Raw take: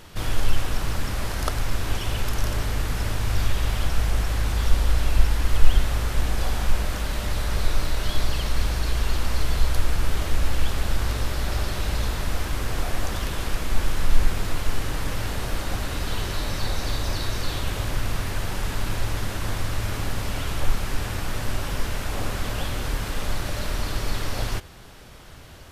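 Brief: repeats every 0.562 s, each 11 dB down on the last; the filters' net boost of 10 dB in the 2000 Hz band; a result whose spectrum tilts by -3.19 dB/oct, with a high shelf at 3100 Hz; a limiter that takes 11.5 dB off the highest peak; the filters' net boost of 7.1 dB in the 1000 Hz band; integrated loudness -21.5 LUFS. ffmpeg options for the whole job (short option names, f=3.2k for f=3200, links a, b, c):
-af "equalizer=f=1k:t=o:g=5.5,equalizer=f=2k:t=o:g=8,highshelf=f=3.1k:g=8.5,alimiter=limit=-12dB:level=0:latency=1,aecho=1:1:562|1124|1686:0.282|0.0789|0.0221,volume=2.5dB"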